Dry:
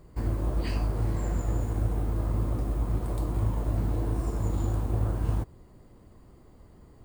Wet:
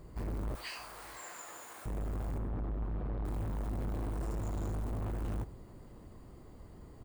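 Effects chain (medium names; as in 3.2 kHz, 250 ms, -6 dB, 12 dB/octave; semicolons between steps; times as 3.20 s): 0.55–1.86 s: high-pass 1.3 kHz 12 dB/octave; saturation -35.5 dBFS, distortion -6 dB; 2.38–3.25 s: distance through air 370 m; delay 626 ms -23 dB; reverberation, pre-delay 33 ms, DRR 19 dB; trim +1 dB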